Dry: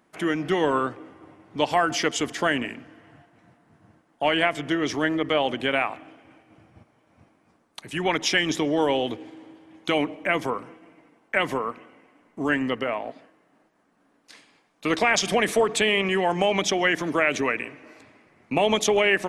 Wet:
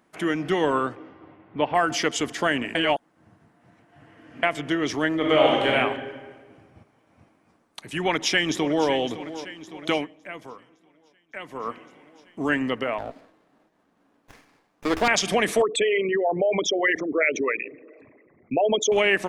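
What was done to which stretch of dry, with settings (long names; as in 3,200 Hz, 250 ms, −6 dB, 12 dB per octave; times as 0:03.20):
0:00.95–0:01.74: low-pass filter 6,000 Hz → 2,300 Hz 24 dB per octave
0:02.75–0:04.43: reverse
0:05.16–0:05.69: thrown reverb, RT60 1.5 s, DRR −3 dB
0:07.99–0:08.88: delay throw 560 ms, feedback 65%, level −14 dB
0:09.92–0:11.69: duck −14 dB, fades 0.16 s
0:12.98–0:15.08: windowed peak hold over 9 samples
0:15.62–0:18.92: spectral envelope exaggerated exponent 3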